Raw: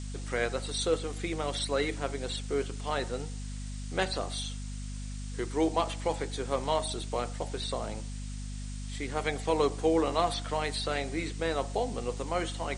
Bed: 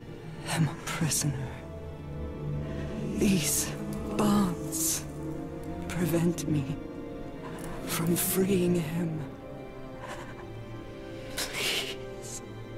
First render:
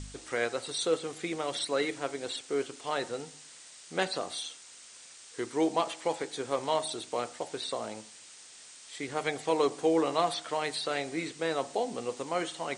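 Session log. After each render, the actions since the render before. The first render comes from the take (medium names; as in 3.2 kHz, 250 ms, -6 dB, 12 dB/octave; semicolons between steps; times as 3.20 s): de-hum 50 Hz, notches 5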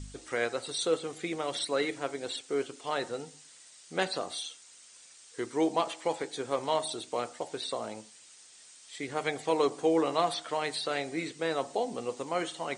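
noise reduction 6 dB, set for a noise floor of -52 dBFS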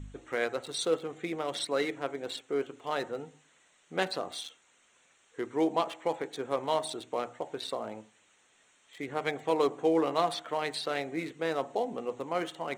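local Wiener filter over 9 samples; hum notches 60/120 Hz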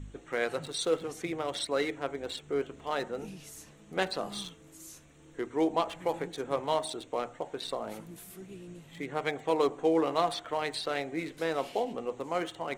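add bed -20.5 dB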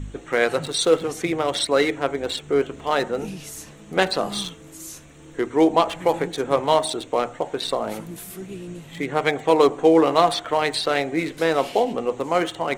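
trim +11 dB; peak limiter -3 dBFS, peak gain reduction 1 dB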